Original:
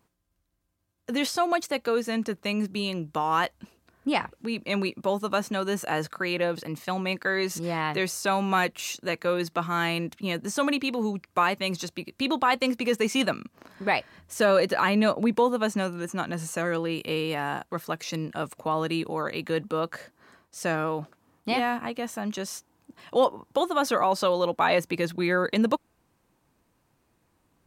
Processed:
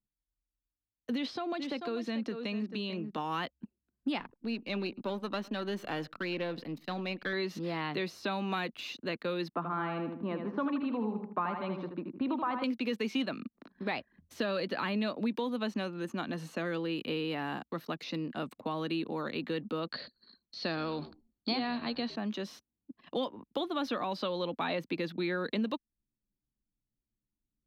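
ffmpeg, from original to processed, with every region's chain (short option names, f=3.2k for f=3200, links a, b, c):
-filter_complex "[0:a]asettb=1/sr,asplit=3[a][b][c];[a]atrim=end=1.154[d];[b]atrim=start=1.15:end=3.18,asetpts=PTS-STARTPTS,afade=t=in:d=0.004:c=qsin,afade=t=out:st=2.026:d=0.004:c=qsin,lowpass=8.8k,aecho=1:1:440:0.251,atrim=end_sample=89523,acompressor=threshold=-28dB:ratio=2.5:attack=3.2:release=140:knee=1:detection=peak[e];[c]atrim=start=3.176[f];[d][e]acrossfade=d=0.004:c1=hsin:c2=qsin[g];[g][f]acrossfade=d=0.004:c1=qsin:c2=hsin,asettb=1/sr,asplit=3[h][i][j];[h]atrim=end=4.194[k];[i]atrim=start=4.19:end=7.33,asetpts=PTS-STARTPTS,afade=t=in:d=0.004:c=qsin,afade=t=out:st=3.136:d=0.004:c=qsin,aeval=exprs='if(lt(val(0),0),0.447*val(0),val(0))':c=same,aecho=1:1:105:0.0668,atrim=end_sample=138474[l];[j]atrim=start=7.326[m];[k][l]acrossfade=d=0.004:c1=hsin:c2=qsin[n];[n][m]acrossfade=d=0.004:c1=qsin:c2=hsin,asettb=1/sr,asplit=3[o][p][q];[o]atrim=end=9.544[r];[p]atrim=start=9.54:end=12.64,asetpts=PTS-STARTPTS,afade=t=in:d=0.004:c=qsin,afade=t=out:st=3.096:d=0.004:c=qsin,lowpass=f=1.1k:t=q:w=2,aecho=1:1:79|158|237|316|395:0.447|0.188|0.0788|0.0331|0.0139,atrim=end_sample=136710[s];[q]atrim=start=12.636[t];[r][s]acrossfade=d=0.004:c1=hsin:c2=qsin[u];[u][t]acrossfade=d=0.004:c1=qsin:c2=hsin,asettb=1/sr,asplit=3[v][w][x];[v]atrim=end=19.924[y];[w]atrim=start=19.92:end=22.16,asetpts=PTS-STARTPTS,afade=t=in:d=0.004:c=qsin,afade=t=out:st=2.236:d=0.004:c=qsin,lowpass=f=4.4k:t=q:w=15,asplit=4[z][aa][ab][ac];[aa]adelay=110,afreqshift=-82,volume=-18dB[ad];[ab]adelay=220,afreqshift=-164,volume=-26.2dB[ae];[ac]adelay=330,afreqshift=-246,volume=-34.4dB[af];[z][ad][ae][af]amix=inputs=4:normalize=0,atrim=end_sample=98784[ag];[x]atrim=start=22.156[ah];[y][ag]acrossfade=d=0.004:c1=hsin:c2=qsin[ai];[ai][ah]acrossfade=d=0.004:c1=qsin:c2=hsin,anlmdn=0.0251,equalizer=f=250:t=o:w=1:g=10,equalizer=f=4k:t=o:w=1:g=9,equalizer=f=8k:t=o:w=1:g=-11,acrossover=split=110|240|2000|4200[aj][ak][al][am][an];[aj]acompressor=threshold=-54dB:ratio=4[ao];[ak]acompressor=threshold=-36dB:ratio=4[ap];[al]acompressor=threshold=-26dB:ratio=4[aq];[am]acompressor=threshold=-33dB:ratio=4[ar];[an]acompressor=threshold=-51dB:ratio=4[as];[ao][ap][aq][ar][as]amix=inputs=5:normalize=0,volume=-7dB"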